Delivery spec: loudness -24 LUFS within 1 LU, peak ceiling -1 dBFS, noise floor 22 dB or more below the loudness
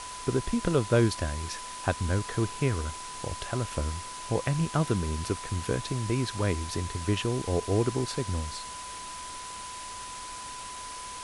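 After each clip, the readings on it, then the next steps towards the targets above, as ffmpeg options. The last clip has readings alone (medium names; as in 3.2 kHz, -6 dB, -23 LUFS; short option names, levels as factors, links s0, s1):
steady tone 1 kHz; tone level -40 dBFS; noise floor -40 dBFS; noise floor target -53 dBFS; loudness -30.5 LUFS; peak level -11.0 dBFS; loudness target -24.0 LUFS
-> -af "bandreject=f=1000:w=30"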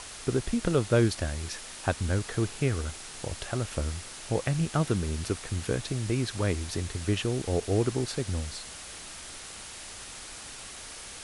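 steady tone not found; noise floor -43 dBFS; noise floor target -53 dBFS
-> -af "afftdn=nr=10:nf=-43"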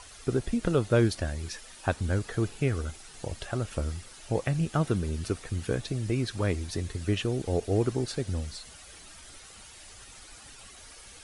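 noise floor -50 dBFS; noise floor target -53 dBFS
-> -af "afftdn=nr=6:nf=-50"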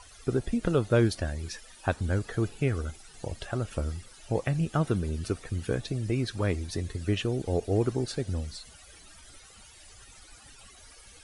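noise floor -53 dBFS; loudness -30.5 LUFS; peak level -11.5 dBFS; loudness target -24.0 LUFS
-> -af "volume=2.11"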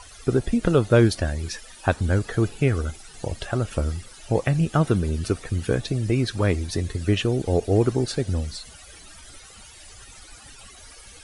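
loudness -24.0 LUFS; peak level -5.0 dBFS; noise floor -46 dBFS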